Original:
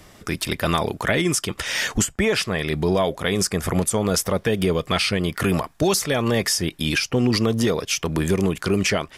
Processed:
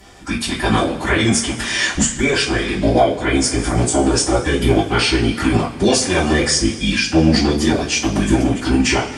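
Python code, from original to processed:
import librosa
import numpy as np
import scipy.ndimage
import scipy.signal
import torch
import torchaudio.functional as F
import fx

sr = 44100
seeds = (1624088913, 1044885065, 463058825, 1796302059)

y = fx.pitch_keep_formants(x, sr, semitones=-7.5)
y = fx.rev_double_slope(y, sr, seeds[0], early_s=0.27, late_s=2.0, knee_db=-19, drr_db=-7.0)
y = y * 10.0 ** (-1.0 / 20.0)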